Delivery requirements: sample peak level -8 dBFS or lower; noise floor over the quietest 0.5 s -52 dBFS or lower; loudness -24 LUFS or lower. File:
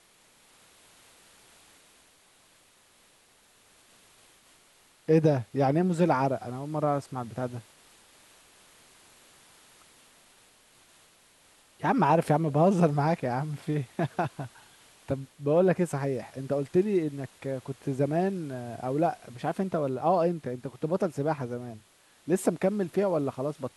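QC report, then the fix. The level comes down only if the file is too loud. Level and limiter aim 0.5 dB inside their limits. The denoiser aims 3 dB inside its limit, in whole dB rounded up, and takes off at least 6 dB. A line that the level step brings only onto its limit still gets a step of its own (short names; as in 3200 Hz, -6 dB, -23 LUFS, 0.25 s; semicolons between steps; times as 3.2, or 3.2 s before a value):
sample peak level -10.0 dBFS: OK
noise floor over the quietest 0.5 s -62 dBFS: OK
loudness -28.0 LUFS: OK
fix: none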